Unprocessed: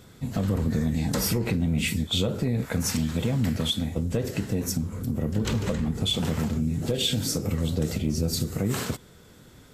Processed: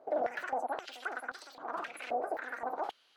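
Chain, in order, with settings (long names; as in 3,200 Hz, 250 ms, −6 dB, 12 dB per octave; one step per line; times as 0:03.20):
time-frequency box erased 0:01.99–0:02.31, 1,500–3,200 Hz
change of speed 3.08×
band-pass on a step sequencer 3.8 Hz 640–4,100 Hz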